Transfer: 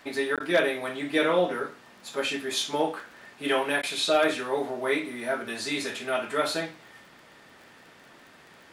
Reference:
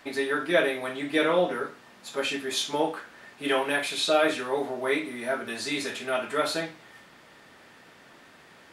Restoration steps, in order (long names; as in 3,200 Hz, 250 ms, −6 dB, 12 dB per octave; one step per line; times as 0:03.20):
clipped peaks rebuilt −13 dBFS
click removal
repair the gap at 0:00.36, 17 ms
repair the gap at 0:00.39/0:03.82, 10 ms